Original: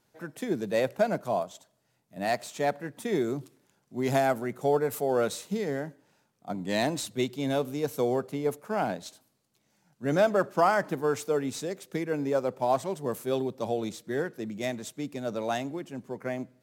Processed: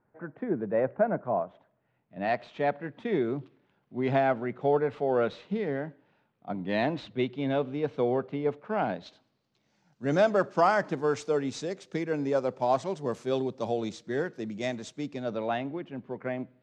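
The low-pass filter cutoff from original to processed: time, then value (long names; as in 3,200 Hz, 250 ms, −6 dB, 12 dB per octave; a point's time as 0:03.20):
low-pass filter 24 dB per octave
0:01.31 1,700 Hz
0:02.30 3,300 Hz
0:08.68 3,300 Hz
0:10.04 6,500 Hz
0:15.03 6,500 Hz
0:15.51 3,300 Hz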